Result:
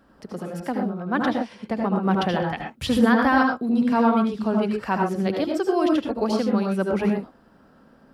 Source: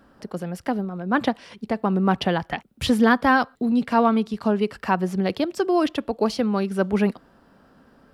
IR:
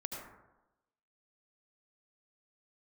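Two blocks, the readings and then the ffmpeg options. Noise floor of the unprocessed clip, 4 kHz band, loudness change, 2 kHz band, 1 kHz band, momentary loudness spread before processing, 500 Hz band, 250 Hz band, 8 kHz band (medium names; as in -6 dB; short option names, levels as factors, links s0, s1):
-56 dBFS, -2.0 dB, 0.0 dB, -1.0 dB, -0.5 dB, 11 LU, -0.5 dB, +0.5 dB, no reading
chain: -filter_complex "[1:a]atrim=start_sample=2205,atrim=end_sample=6174[s0];[0:a][s0]afir=irnorm=-1:irlink=0"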